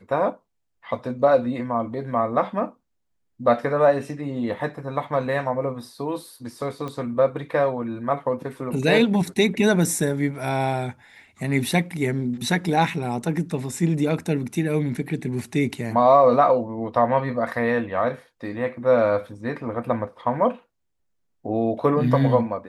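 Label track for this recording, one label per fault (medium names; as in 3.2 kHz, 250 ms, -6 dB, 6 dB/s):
6.880000	6.880000	pop -20 dBFS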